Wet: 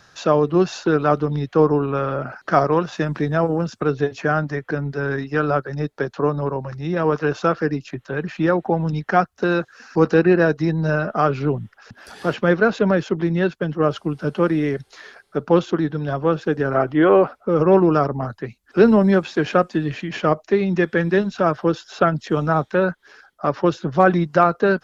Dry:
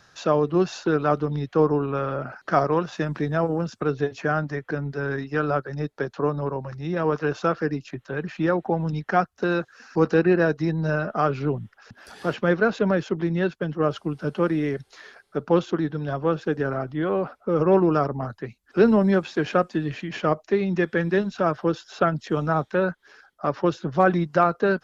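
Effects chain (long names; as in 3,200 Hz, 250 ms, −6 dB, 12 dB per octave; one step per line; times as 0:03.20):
gain on a spectral selection 0:16.75–0:17.26, 270–3,300 Hz +7 dB
level +4 dB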